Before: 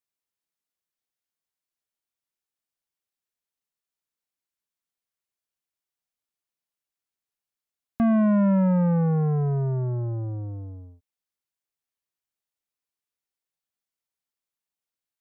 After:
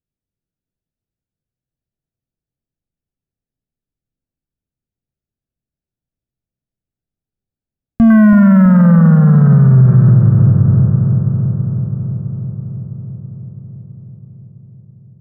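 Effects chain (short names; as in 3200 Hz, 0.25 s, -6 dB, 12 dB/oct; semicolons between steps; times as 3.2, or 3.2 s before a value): Wiener smoothing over 41 samples; tone controls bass +15 dB, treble +8 dB; resonator 130 Hz, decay 1.2 s, harmonics all, mix 70%; 8.1–10.11 band shelf 1600 Hz +13.5 dB 1.1 oct; darkening echo 0.329 s, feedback 76%, low-pass 2100 Hz, level -8 dB; maximiser +17.5 dB; decimation joined by straight lines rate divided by 3×; gain -1 dB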